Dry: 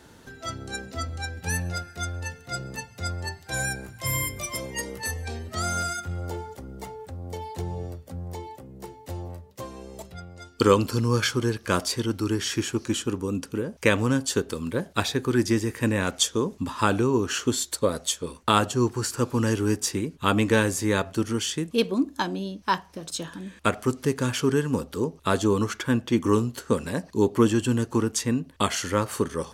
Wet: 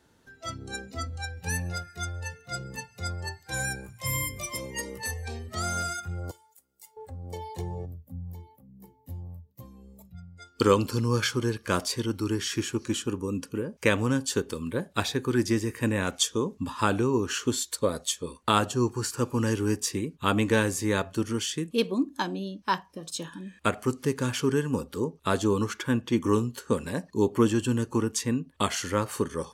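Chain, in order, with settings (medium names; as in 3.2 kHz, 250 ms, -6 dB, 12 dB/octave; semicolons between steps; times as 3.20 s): 6.31–6.97 s: pre-emphasis filter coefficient 0.97; spectral noise reduction 10 dB; 7.85–10.39 s: time-frequency box 310–11000 Hz -14 dB; trim -2.5 dB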